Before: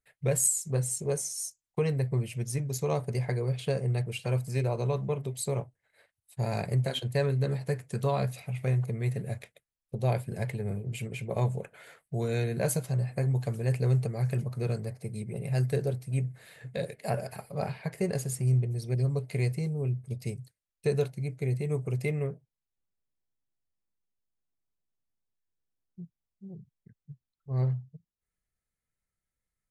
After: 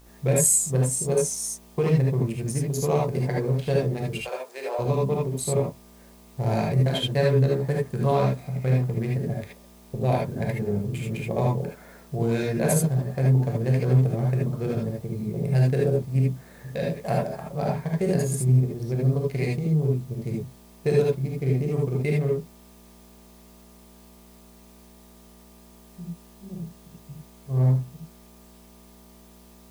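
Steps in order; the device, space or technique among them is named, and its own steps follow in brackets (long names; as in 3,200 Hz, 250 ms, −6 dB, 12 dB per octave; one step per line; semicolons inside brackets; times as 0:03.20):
adaptive Wiener filter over 15 samples
video cassette with head-switching buzz (hum with harmonics 60 Hz, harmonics 20, −56 dBFS −6 dB per octave; white noise bed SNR 33 dB)
0:04.21–0:04.79: high-pass filter 500 Hz 24 dB per octave
reverb whose tail is shaped and stops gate 100 ms rising, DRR −2 dB
level +3 dB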